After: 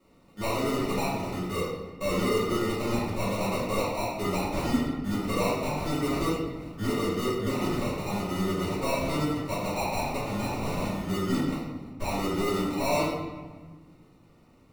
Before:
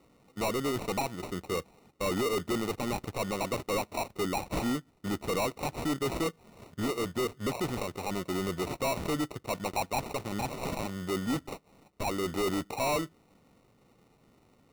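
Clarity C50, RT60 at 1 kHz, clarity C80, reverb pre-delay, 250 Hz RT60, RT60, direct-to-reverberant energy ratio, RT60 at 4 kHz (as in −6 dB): −0.5 dB, 1.4 s, 2.5 dB, 3 ms, 2.2 s, 1.4 s, −10.5 dB, 0.90 s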